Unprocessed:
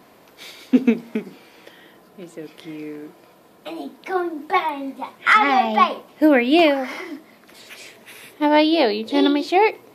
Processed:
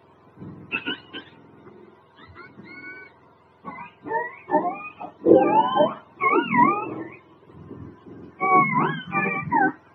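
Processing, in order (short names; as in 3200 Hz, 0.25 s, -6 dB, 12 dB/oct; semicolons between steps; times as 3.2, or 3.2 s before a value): spectrum mirrored in octaves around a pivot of 820 Hz; fifteen-band EQ 400 Hz +10 dB, 1000 Hz +10 dB, 6300 Hz -5 dB; gain -7 dB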